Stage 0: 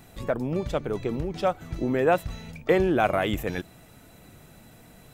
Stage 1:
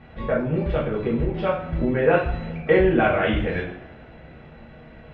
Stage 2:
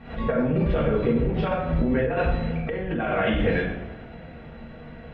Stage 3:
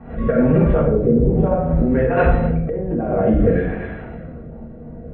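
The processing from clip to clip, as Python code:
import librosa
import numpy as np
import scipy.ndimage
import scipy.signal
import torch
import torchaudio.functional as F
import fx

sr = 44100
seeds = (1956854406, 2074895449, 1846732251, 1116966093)

y1 = scipy.signal.sosfilt(scipy.signal.butter(4, 2800.0, 'lowpass', fs=sr, output='sos'), x)
y1 = fx.rev_double_slope(y1, sr, seeds[0], early_s=0.51, late_s=2.3, knee_db=-25, drr_db=-6.5)
y1 = fx.dynamic_eq(y1, sr, hz=660.0, q=0.74, threshold_db=-27.0, ratio=4.0, max_db=-6)
y2 = fx.over_compress(y1, sr, threshold_db=-23.0, ratio=-1.0)
y2 = fx.room_shoebox(y2, sr, seeds[1], volume_m3=2700.0, walls='furnished', distance_m=1.7)
y2 = fx.pre_swell(y2, sr, db_per_s=110.0)
y2 = y2 * librosa.db_to_amplitude(-1.5)
y3 = y2 + 10.0 ** (-13.5 / 20.0) * np.pad(y2, (int(249 * sr / 1000.0), 0))[:len(y2)]
y3 = fx.filter_lfo_lowpass(y3, sr, shape='sine', hz=0.57, low_hz=520.0, high_hz=1800.0, q=0.91)
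y3 = fx.rotary(y3, sr, hz=1.2)
y3 = y3 * librosa.db_to_amplitude(8.5)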